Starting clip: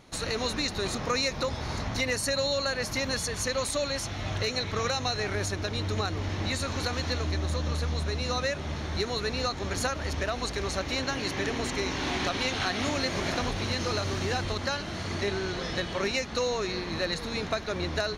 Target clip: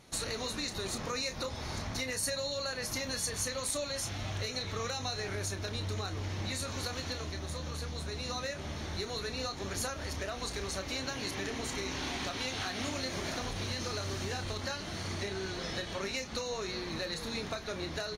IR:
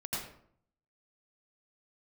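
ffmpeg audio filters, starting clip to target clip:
-filter_complex "[0:a]acompressor=threshold=-31dB:ratio=3,asplit=2[link_01][link_02];[link_02]adelay=31,volume=-9dB[link_03];[link_01][link_03]amix=inputs=2:normalize=0,crystalizer=i=1:c=0,volume=-4dB" -ar 48000 -c:a libvorbis -b:a 48k

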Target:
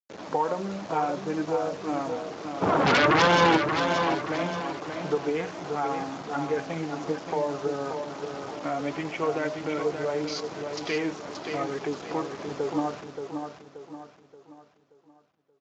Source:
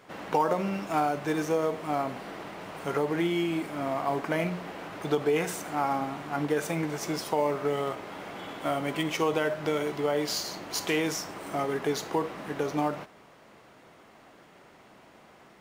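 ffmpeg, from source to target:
ffmpeg -i in.wav -filter_complex "[0:a]afwtdn=0.0158,asettb=1/sr,asplit=3[link_01][link_02][link_03];[link_01]atrim=end=1.254[link_04];[link_02]atrim=start=1.25:end=1.81,asetpts=PTS-STARTPTS,afade=type=in:duration=0.004:curve=qsin,afade=type=out:start_time=0.556:duration=0.004:curve=qsin,adynamicequalizer=threshold=0.00355:dfrequency=2900:dqfactor=0.78:tfrequency=2900:tqfactor=0.78:attack=5:release=100:ratio=0.375:range=2:mode=cutabove:tftype=bell[link_05];[link_03]atrim=start=1.806[link_06];[link_04][link_05]acrossfade=duration=0.004:curve1=hsin:curve2=qsin[link_07];[link_07][link_06]acrossfade=duration=0.004:curve1=qsin:curve2=hsin,asplit=3[link_08][link_09][link_10];[link_08]afade=type=out:start_time=7.84:duration=0.02[link_11];[link_09]lowpass=frequency=4500:width=0.5412,lowpass=frequency=4500:width=1.3066,afade=type=in:start_time=7.84:duration=0.02,afade=type=out:start_time=8.7:duration=0.02[link_12];[link_10]afade=type=in:start_time=8.7:duration=0.02[link_13];[link_11][link_12][link_13]amix=inputs=3:normalize=0,asplit=2[link_14][link_15];[link_15]acompressor=threshold=-35dB:ratio=8,volume=-0.5dB[link_16];[link_14][link_16]amix=inputs=2:normalize=0,asplit=3[link_17][link_18][link_19];[link_17]afade=type=out:start_time=2.61:duration=0.02[link_20];[link_18]aeval=exprs='0.237*sin(PI/2*7.08*val(0)/0.237)':channel_layout=same,afade=type=in:start_time=2.61:duration=0.02,afade=type=out:start_time=3.56:duration=0.02[link_21];[link_19]afade=type=in:start_time=3.56:duration=0.02[link_22];[link_20][link_21][link_22]amix=inputs=3:normalize=0,flanger=delay=1.2:depth=3.2:regen=56:speed=1.2:shape=triangular,acrusher=bits=6:mix=0:aa=0.000001,aecho=1:1:578|1156|1734|2312|2890:0.473|0.189|0.0757|0.0303|0.0121" -ar 16000 -c:a libspeex -b:a 34k out.spx

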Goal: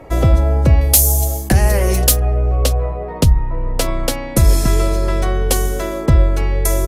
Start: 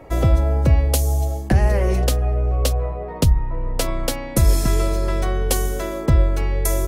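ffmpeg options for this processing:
ffmpeg -i in.wav -filter_complex "[0:a]asettb=1/sr,asplit=3[link_01][link_02][link_03];[link_01]atrim=end=0.814[link_04];[link_02]atrim=start=0.81:end=2.2,asetpts=PTS-STARTPTS,afade=type=in:duration=0.004:curve=qsin,afade=type=out:start_time=1.386:duration=0.004:curve=qsin,aemphasis=mode=production:type=75fm[link_05];[link_03]atrim=start=2.196[link_06];[link_04][link_05]acrossfade=duration=0.004:curve1=hsin:curve2=qsin[link_07];[link_07][link_06]acrossfade=duration=0.004:curve1=qsin:curve2=hsin,apsyclip=7.5dB,aresample=32000,aresample=44100,volume=-3.5dB" out.wav

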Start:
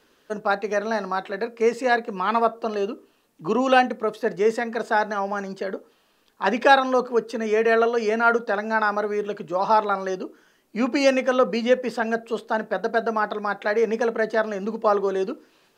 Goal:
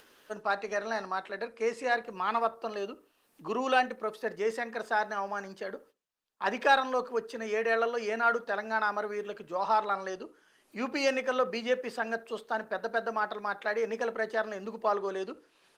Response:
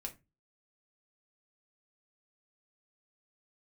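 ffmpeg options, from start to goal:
-filter_complex "[0:a]asettb=1/sr,asplit=3[link_01][link_02][link_03];[link_01]atrim=end=4.514[link_04];[link_02]atrim=start=4.51:end=6.71,asetpts=PTS-STARTPTS,afade=type=in:duration=0.004:curve=qsin,afade=type=out:start_time=2.196:duration=0.004:curve=qsin,agate=range=-33dB:threshold=-45dB:ratio=16:detection=peak[link_05];[link_03]atrim=start=6.706[link_06];[link_04][link_05]acrossfade=duration=0.004:curve1=hsin:curve2=qsin[link_07];[link_07][link_06]acrossfade=duration=0.004:curve1=qsin:curve2=hsin,lowshelf=frequency=460:gain=-10,acompressor=mode=upward:threshold=-44dB:ratio=2.5,asplit=2[link_08][link_09];[link_09]asoftclip=type=tanh:threshold=-17.5dB,volume=-10dB[link_10];[link_08][link_10]amix=inputs=2:normalize=0,asplit=2[link_11][link_12];[link_12]adelay=72,lowpass=frequency=2100:poles=1,volume=-20dB,asplit=2[link_13][link_14];[link_14]adelay=72,lowpass=frequency=2100:poles=1,volume=0.29[link_15];[link_11][link_13][link_15]amix=inputs=3:normalize=0,volume=-7dB" -ar 48000 -c:a libopus -b:a 32k

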